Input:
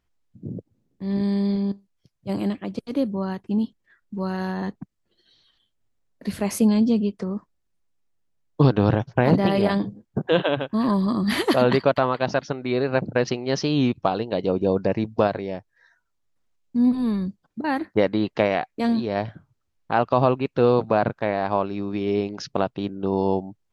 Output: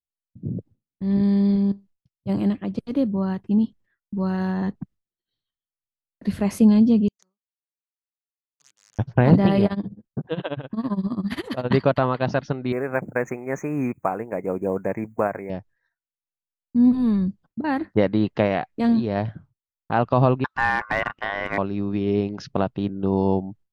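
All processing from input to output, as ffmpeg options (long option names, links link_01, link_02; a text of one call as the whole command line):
ffmpeg -i in.wav -filter_complex "[0:a]asettb=1/sr,asplit=3[link_01][link_02][link_03];[link_01]atrim=end=7.084[link_04];[link_02]atrim=start=7.08:end=8.99,asetpts=PTS-STARTPTS,afade=type=in:duration=0.004:curve=qsin,afade=type=out:start_time=1.906:duration=0.004:curve=qsin,acompressor=threshold=-27dB:ratio=6:attack=3.2:release=140:knee=1:detection=peak,aeval=exprs='(mod(12.6*val(0)+1,2)-1)/12.6':channel_layout=same,bandpass=frequency=6500:width_type=q:width=5.6[link_05];[link_03]atrim=start=8.986[link_06];[link_04][link_05]acrossfade=duration=0.004:curve1=hsin:curve2=qsin[link_07];[link_07][link_06]acrossfade=duration=0.004:curve1=qsin:curve2=hsin,asettb=1/sr,asplit=3[link_08][link_09][link_10];[link_08]atrim=end=9.664[link_11];[link_09]atrim=start=9.66:end=11.71,asetpts=PTS-STARTPTS,afade=type=in:duration=0.004:curve=qsin,afade=type=out:start_time=2.046:duration=0.004:curve=qsin,acompressor=threshold=-28dB:ratio=1.5:attack=3.2:release=140:knee=1:detection=peak,tremolo=f=15:d=0.89[link_12];[link_10]atrim=start=11.706[link_13];[link_11][link_12]acrossfade=duration=0.004:curve1=hsin:curve2=qsin[link_14];[link_14][link_13]acrossfade=duration=0.004:curve1=qsin:curve2=hsin,asettb=1/sr,asplit=3[link_15][link_16][link_17];[link_15]atrim=end=12.724[link_18];[link_16]atrim=start=12.72:end=15.5,asetpts=PTS-STARTPTS,afade=type=in:duration=0.004:curve=qsin,afade=type=out:start_time=2.776:duration=0.004:curve=qsin,aemphasis=mode=production:type=riaa,acrusher=bits=7:mode=log:mix=0:aa=0.000001,asuperstop=centerf=4000:order=20:qfactor=1[link_19];[link_17]atrim=start=15.496[link_20];[link_18][link_19]acrossfade=duration=0.004:curve1=hsin:curve2=qsin[link_21];[link_21][link_20]acrossfade=duration=0.004:curve1=qsin:curve2=hsin,asettb=1/sr,asplit=3[link_22][link_23][link_24];[link_22]atrim=end=20.444[link_25];[link_23]atrim=start=20.44:end=21.58,asetpts=PTS-STARTPTS,afade=type=in:duration=0.004:curve=qsin,afade=type=out:start_time=1.136:duration=0.004:curve=qsin,lowpass=7800,aeval=exprs='val(0)*sin(2*PI*1300*n/s)':channel_layout=same,asoftclip=type=hard:threshold=-11.5dB[link_26];[link_24]atrim=start=21.576[link_27];[link_25][link_26]acrossfade=duration=0.004:curve1=hsin:curve2=qsin[link_28];[link_28][link_27]acrossfade=duration=0.004:curve1=qsin:curve2=hsin,bandreject=frequency=2300:width=27,agate=range=-33dB:threshold=-46dB:ratio=3:detection=peak,bass=frequency=250:gain=7,treble=frequency=4000:gain=-6,volume=-1dB" out.wav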